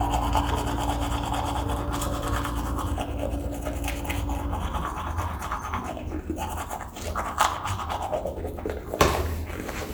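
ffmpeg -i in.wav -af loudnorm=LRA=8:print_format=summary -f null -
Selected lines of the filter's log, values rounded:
Input Integrated:    -28.6 LUFS
Input True Peak:      -4.4 dBTP
Input LRA:             3.9 LU
Input Threshold:     -38.6 LUFS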